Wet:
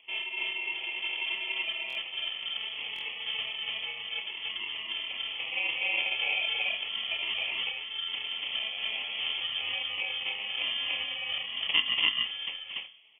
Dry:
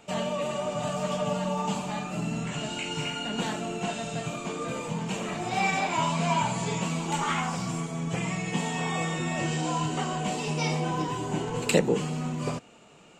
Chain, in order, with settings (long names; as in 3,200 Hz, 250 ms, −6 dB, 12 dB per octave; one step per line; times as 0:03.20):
reverb reduction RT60 1.4 s
mains-hum notches 60/120/180/240/300/360/420 Hz
decimation without filtering 25×
high-frequency loss of the air 390 metres
double-tracking delay 28 ms −12 dB
loudspeakers that aren't time-aligned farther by 80 metres −8 dB, 99 metres 0 dB
on a send at −19.5 dB: convolution reverb RT60 1.4 s, pre-delay 10 ms
on the sum: voice inversion scrambler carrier 3,300 Hz
buffer that repeats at 0:01.88/0:02.94, samples 1,024, times 2
level −3 dB